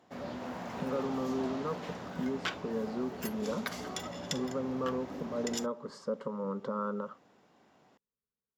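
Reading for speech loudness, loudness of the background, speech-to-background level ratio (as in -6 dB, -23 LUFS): -37.0 LUFS, -40.5 LUFS, 3.5 dB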